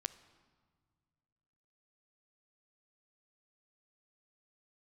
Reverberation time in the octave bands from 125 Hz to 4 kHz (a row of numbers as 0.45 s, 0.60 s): 2.7 s, 2.4 s, 1.9 s, 1.8 s, 1.3 s, 1.2 s